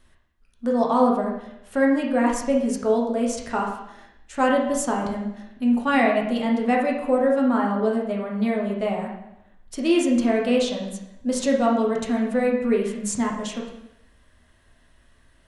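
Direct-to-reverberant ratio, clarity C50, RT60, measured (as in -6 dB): -2.0 dB, 4.0 dB, 0.85 s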